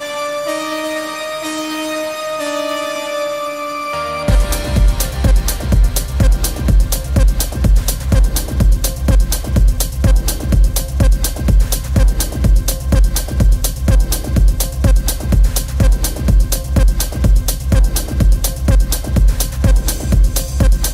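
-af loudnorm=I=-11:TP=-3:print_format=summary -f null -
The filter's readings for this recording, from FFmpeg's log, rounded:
Input Integrated:    -16.1 LUFS
Input True Peak:      -2.3 dBTP
Input LRA:             3.0 LU
Input Threshold:     -26.1 LUFS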